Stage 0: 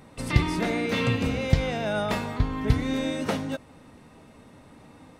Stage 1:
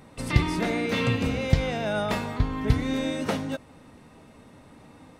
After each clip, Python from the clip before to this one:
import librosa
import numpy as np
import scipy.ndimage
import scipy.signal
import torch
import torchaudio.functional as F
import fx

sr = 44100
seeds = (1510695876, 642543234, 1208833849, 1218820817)

y = x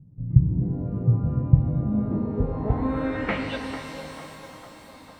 y = fx.filter_sweep_lowpass(x, sr, from_hz=140.0, to_hz=4400.0, start_s=1.7, end_s=3.73, q=3.7)
y = fx.echo_banded(y, sr, ms=448, feedback_pct=70, hz=860.0, wet_db=-9.5)
y = fx.rev_shimmer(y, sr, seeds[0], rt60_s=3.3, semitones=12, shimmer_db=-8, drr_db=4.5)
y = y * librosa.db_to_amplitude(-2.0)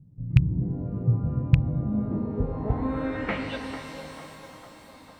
y = fx.rattle_buzz(x, sr, strikes_db=-10.0, level_db=-12.0)
y = y * librosa.db_to_amplitude(-2.5)